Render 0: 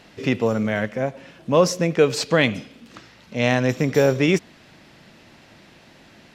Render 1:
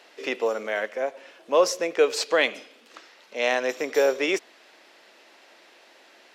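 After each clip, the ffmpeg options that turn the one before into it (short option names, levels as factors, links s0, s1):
-af "highpass=f=380:w=0.5412,highpass=f=380:w=1.3066,volume=0.794"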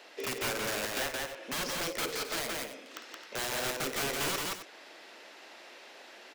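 -filter_complex "[0:a]acrossover=split=2400|5200[s0][s1][s2];[s0]acompressor=threshold=0.0316:ratio=4[s3];[s1]acompressor=threshold=0.00447:ratio=4[s4];[s2]acompressor=threshold=0.00178:ratio=4[s5];[s3][s4][s5]amix=inputs=3:normalize=0,aeval=exprs='(mod(28.2*val(0)+1,2)-1)/28.2':c=same,asplit=2[s6][s7];[s7]aecho=0:1:52.48|172|265.3:0.282|0.794|0.251[s8];[s6][s8]amix=inputs=2:normalize=0"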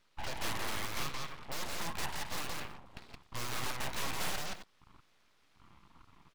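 -af "afwtdn=0.00562,equalizer=f=5400:t=o:w=0.62:g=-12,aeval=exprs='abs(val(0))':c=same,volume=1.12"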